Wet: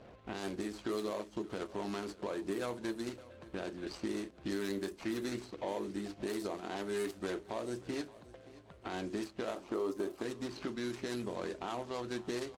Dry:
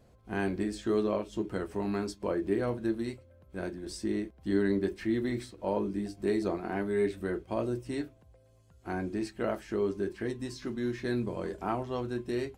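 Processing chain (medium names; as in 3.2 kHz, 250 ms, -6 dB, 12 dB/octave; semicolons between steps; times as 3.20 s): median filter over 25 samples; time-frequency box 9.56–10.22 s, 230–1400 Hz +7 dB; level-controlled noise filter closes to 2.9 kHz, open at -24 dBFS; tilt EQ +3.5 dB/octave; harmonic-percussive split harmonic -6 dB; dynamic bell 2.4 kHz, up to -5 dB, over -57 dBFS, Q 0.88; compression 2.5:1, threshold -56 dBFS, peak gain reduction 17.5 dB; peak limiter -42 dBFS, peak gain reduction 6.5 dB; on a send: feedback delay 575 ms, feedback 44%, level -19.5 dB; on the sum: trim +16 dB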